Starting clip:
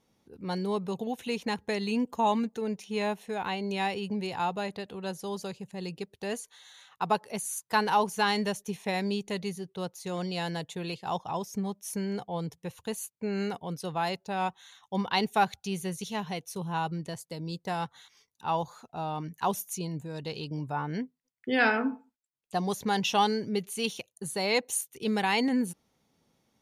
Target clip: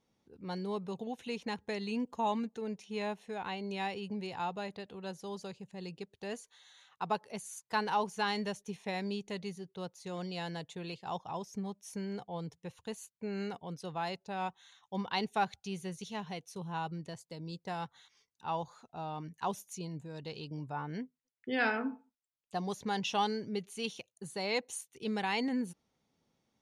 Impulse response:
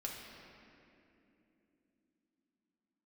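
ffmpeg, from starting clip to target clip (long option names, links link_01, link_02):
-af "lowpass=8000,volume=-6.5dB"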